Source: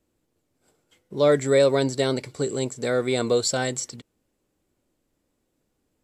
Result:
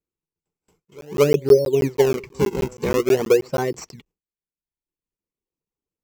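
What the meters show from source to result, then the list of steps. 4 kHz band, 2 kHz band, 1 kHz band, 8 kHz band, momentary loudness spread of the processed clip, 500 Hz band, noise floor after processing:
-5.0 dB, -1.0 dB, +1.5 dB, -5.5 dB, 10 LU, +4.0 dB, under -85 dBFS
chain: low-pass that closes with the level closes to 380 Hz, closed at -15.5 dBFS; gate with hold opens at -53 dBFS; dynamic bell 380 Hz, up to +5 dB, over -34 dBFS, Q 2.1; reverb removal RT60 0.93 s; pre-echo 227 ms -22.5 dB; in parallel at -3.5 dB: decimation with a swept rate 42×, swing 160% 0.48 Hz; on the sum: rippled EQ curve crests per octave 0.77, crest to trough 8 dB; crackling interface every 0.16 s, samples 512, zero, from 0.85 s

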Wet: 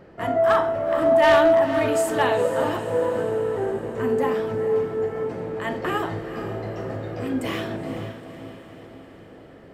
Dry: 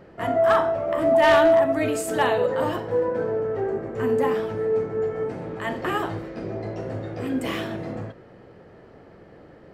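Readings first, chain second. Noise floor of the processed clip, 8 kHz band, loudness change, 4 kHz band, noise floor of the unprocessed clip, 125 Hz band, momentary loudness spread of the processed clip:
-46 dBFS, +0.5 dB, +0.5 dB, +0.5 dB, -49 dBFS, +0.5 dB, 14 LU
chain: echo that smears into a reverb 471 ms, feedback 56%, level -11 dB

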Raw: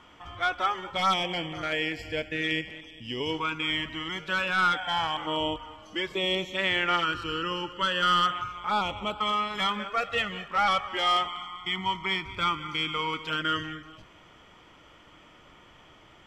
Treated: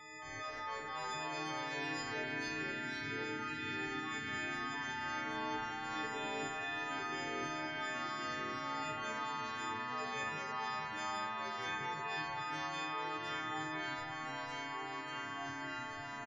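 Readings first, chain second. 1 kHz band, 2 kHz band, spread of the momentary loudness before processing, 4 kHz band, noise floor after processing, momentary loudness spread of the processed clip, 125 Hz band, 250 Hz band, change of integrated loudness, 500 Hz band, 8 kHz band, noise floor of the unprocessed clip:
-11.0 dB, -9.0 dB, 9 LU, -15.5 dB, -45 dBFS, 3 LU, -10.5 dB, -9.0 dB, -12.0 dB, -11.0 dB, -3.0 dB, -55 dBFS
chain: partials quantised in pitch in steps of 6 st; spectral gate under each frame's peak -25 dB strong; comb 7 ms, depth 59%; reverse; compression 10:1, threshold -34 dBFS, peak gain reduction 18 dB; reverse; whistle 2 kHz -51 dBFS; feedback comb 150 Hz, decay 1.9 s, mix 70%; on a send: multi-tap echo 55/467 ms -8/-6 dB; on the sum: ever faster or slower copies 219 ms, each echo -2 st, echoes 3; swell ahead of each attack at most 30 dB/s; trim +3 dB

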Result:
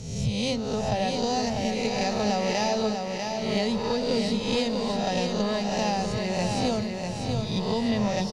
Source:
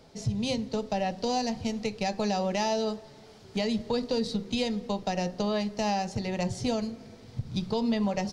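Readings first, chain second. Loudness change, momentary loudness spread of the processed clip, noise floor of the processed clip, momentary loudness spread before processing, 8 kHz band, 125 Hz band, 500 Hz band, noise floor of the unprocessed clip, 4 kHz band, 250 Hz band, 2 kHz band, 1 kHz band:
+3.5 dB, 4 LU, -32 dBFS, 6 LU, +5.5 dB, +4.5 dB, +4.0 dB, -51 dBFS, +5.5 dB, +3.0 dB, +5.0 dB, +3.5 dB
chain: reverse spectral sustain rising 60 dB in 0.98 s; on a send: feedback delay 645 ms, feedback 43%, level -5 dB

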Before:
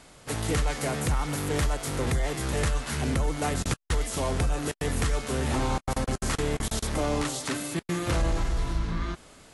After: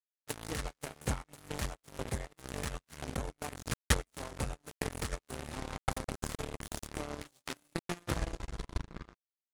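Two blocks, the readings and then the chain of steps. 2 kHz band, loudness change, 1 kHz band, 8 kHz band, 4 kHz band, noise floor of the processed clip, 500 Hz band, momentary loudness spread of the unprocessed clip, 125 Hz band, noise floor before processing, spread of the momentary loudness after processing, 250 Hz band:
-8.5 dB, -11.0 dB, -10.0 dB, -9.5 dB, -8.5 dB, under -85 dBFS, -11.5 dB, 3 LU, -11.5 dB, -53 dBFS, 7 LU, -12.0 dB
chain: transient shaper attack +6 dB, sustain -7 dB; power-law waveshaper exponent 3; trim +2 dB

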